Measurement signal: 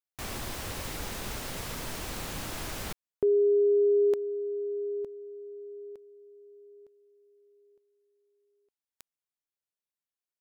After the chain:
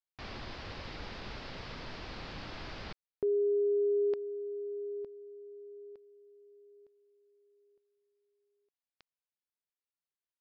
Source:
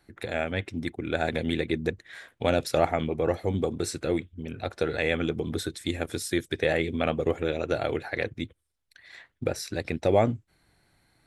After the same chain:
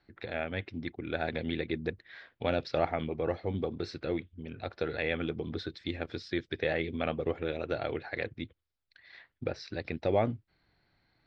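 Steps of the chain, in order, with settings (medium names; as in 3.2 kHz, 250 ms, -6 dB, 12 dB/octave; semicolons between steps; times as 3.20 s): elliptic low-pass 4.9 kHz, stop band 70 dB; trim -5 dB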